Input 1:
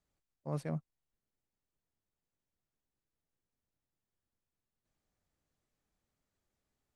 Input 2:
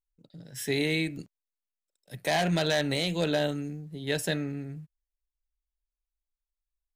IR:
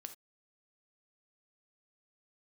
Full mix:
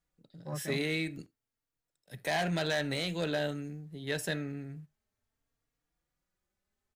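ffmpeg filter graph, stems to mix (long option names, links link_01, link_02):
-filter_complex "[0:a]acontrast=67,asplit=2[link_01][link_02];[link_02]adelay=3.7,afreqshift=0.5[link_03];[link_01][link_03]amix=inputs=2:normalize=1,volume=-5dB[link_04];[1:a]aeval=exprs='0.2*(cos(1*acos(clip(val(0)/0.2,-1,1)))-cos(1*PI/2))+0.00891*(cos(5*acos(clip(val(0)/0.2,-1,1)))-cos(5*PI/2))':channel_layout=same,volume=-8.5dB,asplit=2[link_05][link_06];[link_06]volume=-5.5dB[link_07];[2:a]atrim=start_sample=2205[link_08];[link_07][link_08]afir=irnorm=-1:irlink=0[link_09];[link_04][link_05][link_09]amix=inputs=3:normalize=0,equalizer=frequency=1600:width=1.4:gain=3.5"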